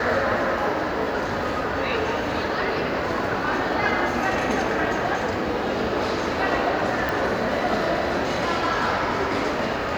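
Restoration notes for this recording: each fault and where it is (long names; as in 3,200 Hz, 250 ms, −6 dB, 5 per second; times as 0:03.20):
0:07.09: click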